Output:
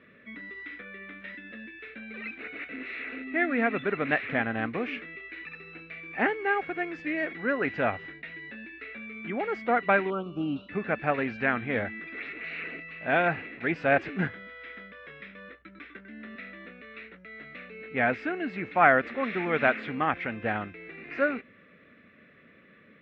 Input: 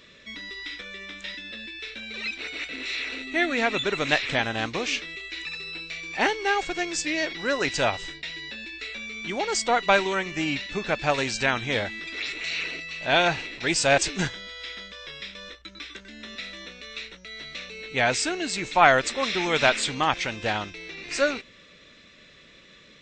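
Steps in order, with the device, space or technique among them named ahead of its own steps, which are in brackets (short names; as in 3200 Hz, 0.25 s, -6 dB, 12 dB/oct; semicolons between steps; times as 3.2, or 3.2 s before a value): bass cabinet (speaker cabinet 68–2100 Hz, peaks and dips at 70 Hz -10 dB, 130 Hz -5 dB, 240 Hz +4 dB, 350 Hz -3 dB, 580 Hz -3 dB, 940 Hz -9 dB); 10.1–10.69 elliptic band-stop 1300–2900 Hz, stop band 50 dB; bell 3600 Hz -2.5 dB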